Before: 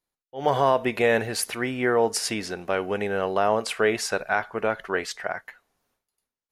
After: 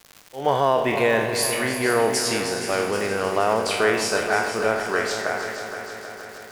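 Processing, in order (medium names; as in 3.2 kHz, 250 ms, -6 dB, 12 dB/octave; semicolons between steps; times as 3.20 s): spectral sustain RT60 0.67 s; crackle 250 per s -32 dBFS; multi-head delay 157 ms, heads second and third, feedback 63%, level -10.5 dB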